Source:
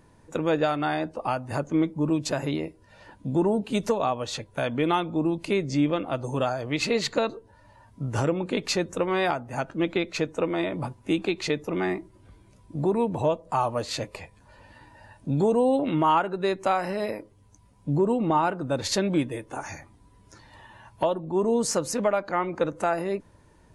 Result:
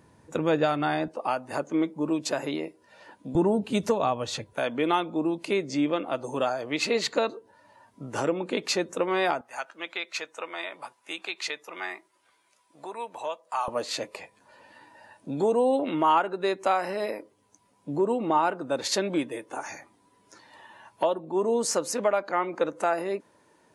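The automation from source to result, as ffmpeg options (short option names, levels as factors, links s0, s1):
-af "asetnsamples=n=441:p=0,asendcmd='1.08 highpass f 280;3.35 highpass f 80;4.53 highpass f 260;9.41 highpass f 1000;13.68 highpass f 290',highpass=81"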